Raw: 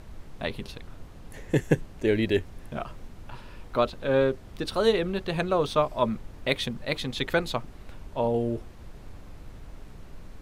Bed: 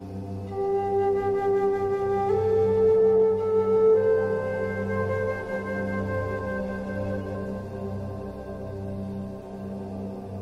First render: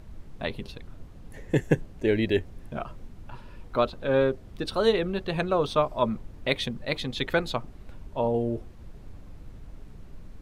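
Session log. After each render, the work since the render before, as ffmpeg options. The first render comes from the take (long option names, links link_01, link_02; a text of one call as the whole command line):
ffmpeg -i in.wav -af "afftdn=noise_reduction=6:noise_floor=-46" out.wav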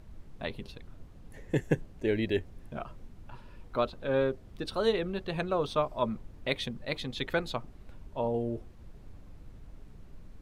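ffmpeg -i in.wav -af "volume=-5dB" out.wav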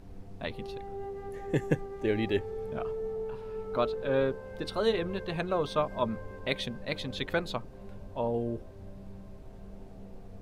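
ffmpeg -i in.wav -i bed.wav -filter_complex "[1:a]volume=-16dB[link_01];[0:a][link_01]amix=inputs=2:normalize=0" out.wav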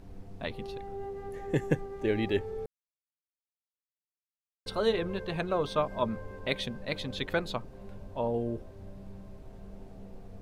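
ffmpeg -i in.wav -filter_complex "[0:a]asplit=3[link_01][link_02][link_03];[link_01]atrim=end=2.66,asetpts=PTS-STARTPTS,afade=type=out:start_time=2.656:duration=0.004:curve=hsin[link_04];[link_02]atrim=start=2.66:end=4.66,asetpts=PTS-STARTPTS,volume=0[link_05];[link_03]atrim=start=4.66,asetpts=PTS-STARTPTS,afade=type=in:duration=0.004:curve=hsin[link_06];[link_04][link_05][link_06]concat=n=3:v=0:a=1" out.wav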